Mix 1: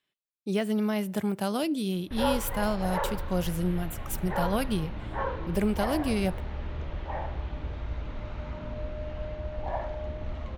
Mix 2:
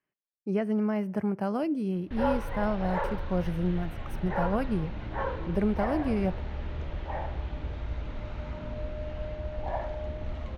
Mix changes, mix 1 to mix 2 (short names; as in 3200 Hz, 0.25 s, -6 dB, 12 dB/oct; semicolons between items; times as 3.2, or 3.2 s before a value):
speech: add running mean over 12 samples; background: add bell 1100 Hz -2.5 dB 0.36 oct